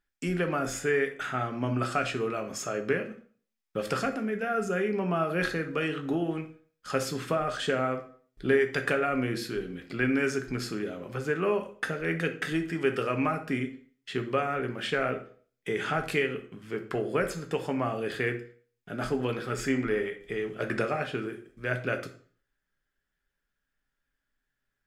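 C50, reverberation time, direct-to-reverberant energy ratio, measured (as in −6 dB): 11.5 dB, 0.45 s, 5.0 dB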